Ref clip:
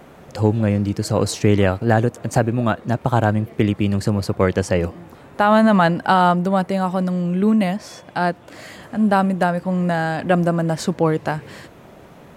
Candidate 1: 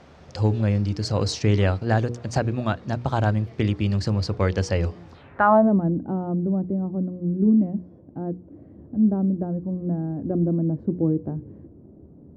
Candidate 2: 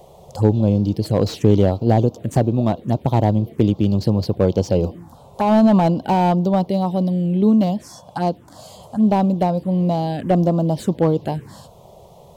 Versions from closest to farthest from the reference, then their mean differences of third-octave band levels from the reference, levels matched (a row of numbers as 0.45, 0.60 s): 2, 1; 4.0, 7.5 dB